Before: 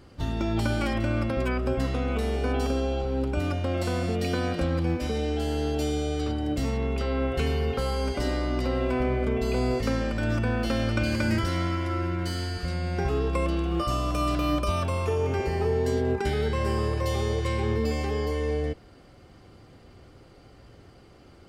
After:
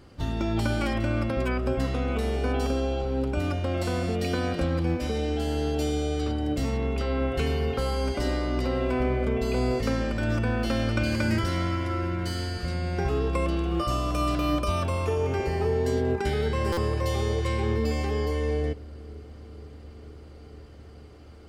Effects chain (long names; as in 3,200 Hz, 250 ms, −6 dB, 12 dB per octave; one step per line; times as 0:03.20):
bucket-brigade delay 472 ms, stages 2,048, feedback 82%, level −23 dB
buffer that repeats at 0:16.72, samples 256, times 8